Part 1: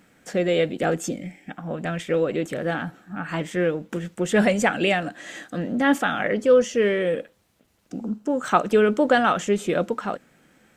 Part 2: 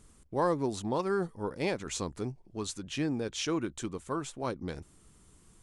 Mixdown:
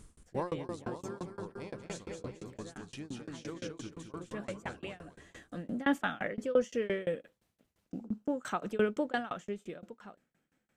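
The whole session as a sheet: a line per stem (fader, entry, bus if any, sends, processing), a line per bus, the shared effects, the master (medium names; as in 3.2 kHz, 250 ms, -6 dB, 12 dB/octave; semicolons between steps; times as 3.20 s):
4.93 s -19.5 dB -> 5.73 s -8 dB -> 8.82 s -8 dB -> 9.62 s -17 dB, 0.00 s, no send, no echo send, none
+3.0 dB, 0.00 s, no send, echo send -15 dB, auto duck -12 dB, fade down 0.80 s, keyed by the first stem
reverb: none
echo: feedback delay 219 ms, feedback 58%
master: bass shelf 190 Hz +4 dB; tremolo saw down 5.8 Hz, depth 100%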